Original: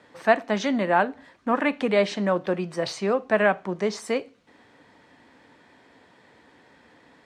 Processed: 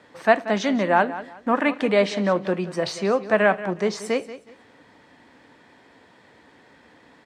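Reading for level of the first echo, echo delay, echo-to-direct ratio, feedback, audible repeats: -14.5 dB, 0.183 s, -14.0 dB, 26%, 2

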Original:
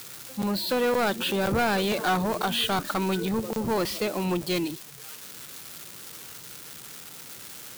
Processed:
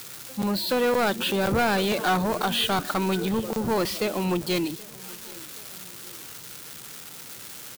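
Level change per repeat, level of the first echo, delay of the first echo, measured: -4.5 dB, -23.0 dB, 0.777 s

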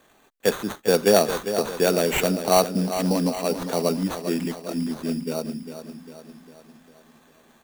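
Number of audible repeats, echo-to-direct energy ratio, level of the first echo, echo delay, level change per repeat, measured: 5, -8.5 dB, -10.0 dB, 0.401 s, -5.5 dB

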